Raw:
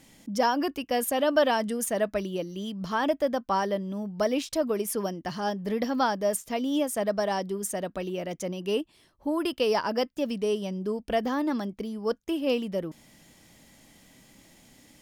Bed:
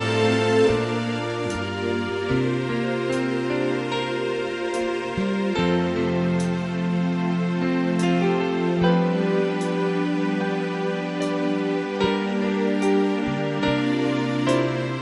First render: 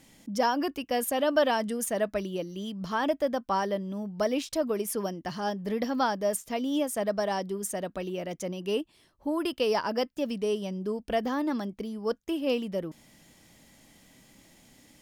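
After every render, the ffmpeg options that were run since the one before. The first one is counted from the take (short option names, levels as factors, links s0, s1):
-af "volume=0.841"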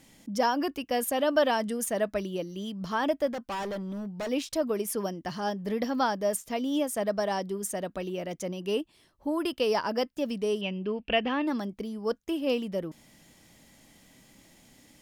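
-filter_complex "[0:a]asplit=3[s0][s1][s2];[s0]afade=t=out:st=3.26:d=0.02[s3];[s1]asoftclip=type=hard:threshold=0.0282,afade=t=in:st=3.26:d=0.02,afade=t=out:st=4.28:d=0.02[s4];[s2]afade=t=in:st=4.28:d=0.02[s5];[s3][s4][s5]amix=inputs=3:normalize=0,asettb=1/sr,asplit=3[s6][s7][s8];[s6]atrim=end=10.614[s9];[s7]atrim=start=10.61:end=11.47,asetpts=PTS-STARTPTS,afade=t=in:d=0.004:c=qsin,afade=t=out:st=0.856:d=0.004:c=qsin,lowpass=f=2700:t=q:w=7.7[s10];[s8]atrim=start=11.466[s11];[s9][s10]acrossfade=d=0.004:c1=hsin:c2=qsin[s12];[s12][s11]acrossfade=d=0.004:c1=qsin:c2=hsin"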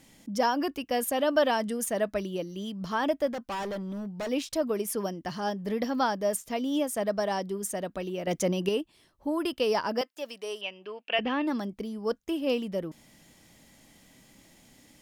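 -filter_complex "[0:a]asettb=1/sr,asplit=3[s0][s1][s2];[s0]atrim=end=8.274[s3];[s1]atrim=start=8.27:end=8.69,asetpts=PTS-STARTPTS,afade=t=in:d=0.004:c=qsin,afade=t=out:st=0.416:d=0.004:c=qsin,acontrast=90[s4];[s2]atrim=start=8.686[s5];[s3][s4]acrossfade=d=0.004:c1=hsin:c2=qsin[s6];[s6][s5]acrossfade=d=0.004:c1=qsin:c2=hsin,asettb=1/sr,asplit=3[s7][s8][s9];[s7]atrim=end=10.014[s10];[s8]atrim=start=10.01:end=11.19,asetpts=PTS-STARTPTS,afade=t=in:d=0.004:c=qsin,afade=t=out:st=1.176:d=0.004:c=qsin,highpass=650[s11];[s9]atrim=start=11.186[s12];[s10][s11]acrossfade=d=0.004:c1=hsin:c2=qsin[s13];[s13][s12]acrossfade=d=0.004:c1=qsin:c2=hsin"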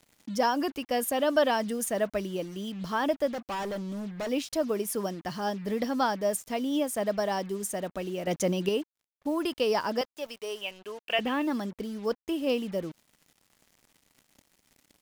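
-af "acrusher=bits=7:mix=0:aa=0.5"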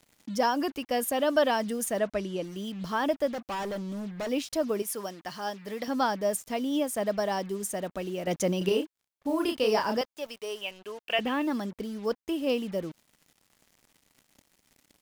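-filter_complex "[0:a]asettb=1/sr,asplit=3[s0][s1][s2];[s0]atrim=end=1.994[s3];[s1]atrim=start=1.99:end=2.44,asetpts=PTS-STARTPTS,afade=t=in:d=0.004:c=qsin,afade=t=out:st=0.446:d=0.004:c=qsin,lowpass=8600[s4];[s2]atrim=start=2.436[s5];[s3][s4]acrossfade=d=0.004:c1=hsin:c2=qsin[s6];[s6][s5]acrossfade=d=0.004:c1=qsin:c2=hsin,asettb=1/sr,asplit=3[s7][s8][s9];[s7]atrim=end=4.824[s10];[s8]atrim=start=4.82:end=5.88,asetpts=PTS-STARTPTS,afade=t=in:d=0.004:c=qsin,afade=t=out:st=1.056:d=0.004:c=qsin,lowshelf=f=390:g=-11.5[s11];[s9]atrim=start=5.876[s12];[s10][s11]acrossfade=d=0.004:c1=hsin:c2=qsin[s13];[s13][s12]acrossfade=d=0.004:c1=qsin:c2=hsin,asettb=1/sr,asplit=3[s14][s15][s16];[s14]atrim=end=8.584[s17];[s15]atrim=start=8.58:end=9.97,asetpts=PTS-STARTPTS,afade=t=in:d=0.004:c=qsin,afade=t=out:st=1.386:d=0.004:c=qsin,asplit=2[s18][s19];[s19]adelay=32,volume=0.631[s20];[s18][s20]amix=inputs=2:normalize=0,atrim=end_sample=61299[s21];[s16]atrim=start=9.966[s22];[s17][s21]acrossfade=d=0.004:c1=hsin:c2=qsin[s23];[s23][s22]acrossfade=d=0.004:c1=qsin:c2=hsin"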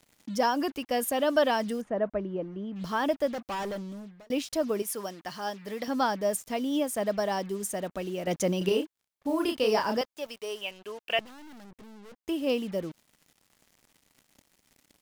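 -filter_complex "[0:a]asplit=3[s0][s1][s2];[s0]afade=t=out:st=1.8:d=0.02[s3];[s1]lowpass=1300,afade=t=in:st=1.8:d=0.02,afade=t=out:st=2.75:d=0.02[s4];[s2]afade=t=in:st=2.75:d=0.02[s5];[s3][s4][s5]amix=inputs=3:normalize=0,asettb=1/sr,asplit=3[s6][s7][s8];[s6]atrim=end=11.194[s9];[s7]atrim=start=11.19:end=12.24,asetpts=PTS-STARTPTS,afade=t=in:d=0.004:c=qsin,afade=t=out:st=1.046:d=0.004:c=qsin,aeval=exprs='(tanh(251*val(0)+0.75)-tanh(0.75))/251':c=same[s10];[s8]atrim=start=12.236[s11];[s9][s10]acrossfade=d=0.004:c1=hsin:c2=qsin[s12];[s12][s11]acrossfade=d=0.004:c1=qsin:c2=hsin,asplit=2[s13][s14];[s13]atrim=end=4.3,asetpts=PTS-STARTPTS,afade=t=out:st=3.68:d=0.62[s15];[s14]atrim=start=4.3,asetpts=PTS-STARTPTS,afade=t=in:d=0.004:c=hsin[s16];[s15][s16]concat=n=2:v=0:a=1"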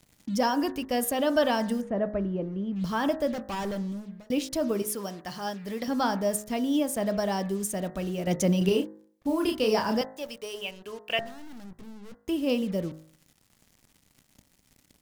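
-af "bass=f=250:g=9,treble=f=4000:g=2,bandreject=f=52.72:t=h:w=4,bandreject=f=105.44:t=h:w=4,bandreject=f=158.16:t=h:w=4,bandreject=f=210.88:t=h:w=4,bandreject=f=263.6:t=h:w=4,bandreject=f=316.32:t=h:w=4,bandreject=f=369.04:t=h:w=4,bandreject=f=421.76:t=h:w=4,bandreject=f=474.48:t=h:w=4,bandreject=f=527.2:t=h:w=4,bandreject=f=579.92:t=h:w=4,bandreject=f=632.64:t=h:w=4,bandreject=f=685.36:t=h:w=4,bandreject=f=738.08:t=h:w=4,bandreject=f=790.8:t=h:w=4,bandreject=f=843.52:t=h:w=4,bandreject=f=896.24:t=h:w=4,bandreject=f=948.96:t=h:w=4,bandreject=f=1001.68:t=h:w=4,bandreject=f=1054.4:t=h:w=4,bandreject=f=1107.12:t=h:w=4,bandreject=f=1159.84:t=h:w=4,bandreject=f=1212.56:t=h:w=4,bandreject=f=1265.28:t=h:w=4,bandreject=f=1318:t=h:w=4,bandreject=f=1370.72:t=h:w=4,bandreject=f=1423.44:t=h:w=4,bandreject=f=1476.16:t=h:w=4,bandreject=f=1528.88:t=h:w=4,bandreject=f=1581.6:t=h:w=4,bandreject=f=1634.32:t=h:w=4,bandreject=f=1687.04:t=h:w=4,bandreject=f=1739.76:t=h:w=4,bandreject=f=1792.48:t=h:w=4,bandreject=f=1845.2:t=h:w=4,bandreject=f=1897.92:t=h:w=4,bandreject=f=1950.64:t=h:w=4,bandreject=f=2003.36:t=h:w=4"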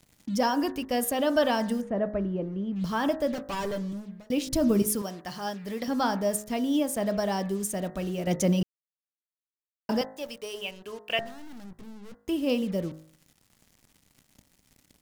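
-filter_complex "[0:a]asettb=1/sr,asplit=3[s0][s1][s2];[s0]atrim=end=3.324[s3];[s1]atrim=start=3.32:end=3.93,asetpts=PTS-STARTPTS,afade=t=in:d=0.004:c=qsin,afade=t=out:st=0.606:d=0.004:c=qsin,aecho=1:1:7:0.62,atrim=end_sample=26901[s4];[s2]atrim=start=3.926[s5];[s3][s4]acrossfade=d=0.004:c1=hsin:c2=qsin[s6];[s6][s5]acrossfade=d=0.004:c1=qsin:c2=hsin,asettb=1/sr,asplit=3[s7][s8][s9];[s7]atrim=end=4.474[s10];[s8]atrim=start=4.47:end=5.02,asetpts=PTS-STARTPTS,afade=t=in:d=0.004:c=qsin,afade=t=out:st=0.546:d=0.004:c=qsin,bass=f=250:g=14,treble=f=4000:g=4[s11];[s9]atrim=start=5.016[s12];[s10][s11]acrossfade=d=0.004:c1=hsin:c2=qsin[s13];[s13][s12]acrossfade=d=0.004:c1=qsin:c2=hsin,asplit=3[s14][s15][s16];[s14]atrim=end=8.63,asetpts=PTS-STARTPTS,afade=t=out:st=8.626:d=0.004:c=hsin[s17];[s15]atrim=start=8.63:end=9.89,asetpts=PTS-STARTPTS,volume=0[s18];[s16]atrim=start=9.89,asetpts=PTS-STARTPTS,afade=t=in:d=0.004:c=hsin[s19];[s17][s18][s19]concat=n=3:v=0:a=1"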